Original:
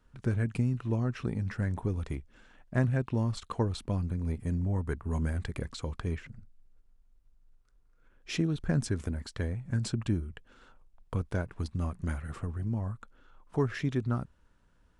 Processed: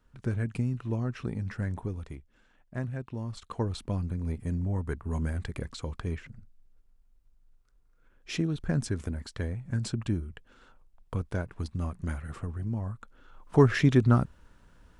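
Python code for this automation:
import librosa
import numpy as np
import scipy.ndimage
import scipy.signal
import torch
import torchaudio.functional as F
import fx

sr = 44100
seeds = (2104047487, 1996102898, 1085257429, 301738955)

y = fx.gain(x, sr, db=fx.line((1.73, -1.0), (2.18, -7.0), (3.2, -7.0), (3.71, 0.0), (12.95, 0.0), (13.62, 9.0)))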